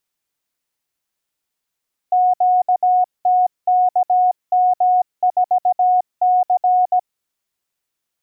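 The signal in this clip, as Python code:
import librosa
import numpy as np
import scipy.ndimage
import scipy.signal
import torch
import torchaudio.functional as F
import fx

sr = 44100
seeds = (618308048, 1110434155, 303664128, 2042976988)

y = fx.morse(sr, text='QTKM4C', wpm=17, hz=730.0, level_db=-11.0)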